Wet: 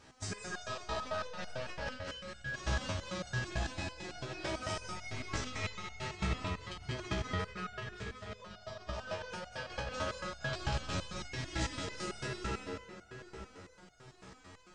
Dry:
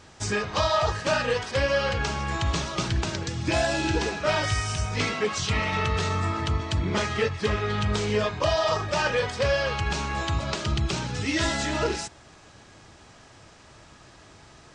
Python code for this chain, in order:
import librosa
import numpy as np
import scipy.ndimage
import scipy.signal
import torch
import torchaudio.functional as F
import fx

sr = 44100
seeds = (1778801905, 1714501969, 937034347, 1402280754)

y = fx.rev_freeverb(x, sr, rt60_s=4.9, hf_ratio=0.6, predelay_ms=75, drr_db=0.0)
y = fx.over_compress(y, sr, threshold_db=-25.0, ratio=-0.5)
y = fx.spec_box(y, sr, start_s=1.87, length_s=0.61, low_hz=410.0, high_hz=1300.0, gain_db=-8)
y = fx.echo_feedback(y, sr, ms=194, feedback_pct=45, wet_db=-4.0)
y = fx.resonator_held(y, sr, hz=9.0, low_hz=64.0, high_hz=720.0)
y = y * 10.0 ** (-3.0 / 20.0)